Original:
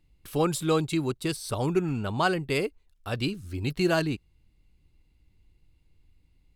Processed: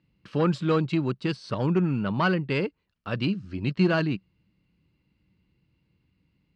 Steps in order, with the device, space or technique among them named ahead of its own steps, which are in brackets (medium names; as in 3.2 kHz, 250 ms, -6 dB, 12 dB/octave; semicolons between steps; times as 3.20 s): guitar amplifier (valve stage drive 17 dB, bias 0.3; tone controls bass -5 dB, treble +3 dB; cabinet simulation 96–4000 Hz, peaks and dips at 130 Hz +5 dB, 190 Hz +10 dB, 410 Hz -4 dB, 750 Hz -8 dB, 2.2 kHz -4 dB, 3.6 kHz -9 dB); trim +4.5 dB